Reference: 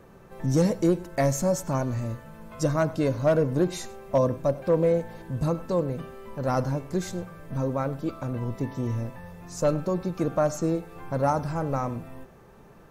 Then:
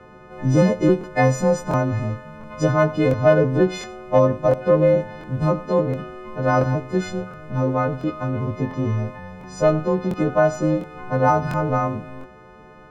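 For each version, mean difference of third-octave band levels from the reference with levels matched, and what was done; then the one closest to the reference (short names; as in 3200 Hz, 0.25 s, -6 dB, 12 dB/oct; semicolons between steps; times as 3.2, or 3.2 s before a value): 4.5 dB: frequency quantiser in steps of 3 st; LPF 2300 Hz 12 dB/oct; crackling interface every 0.70 s, samples 1024, repeat, from 0.99; gain +6.5 dB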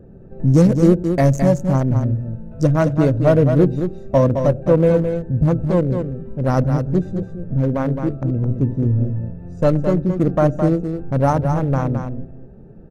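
7.0 dB: Wiener smoothing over 41 samples; low shelf 330 Hz +7 dB; on a send: echo 0.215 s -7 dB; on the sum: gain +5.5 dB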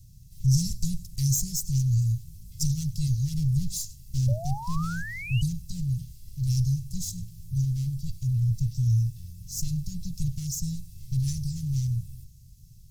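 16.5 dB: minimum comb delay 1.5 ms; Chebyshev band-stop 120–5200 Hz, order 3; painted sound rise, 4.28–5.42, 550–3000 Hz -46 dBFS; gain +8.5 dB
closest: first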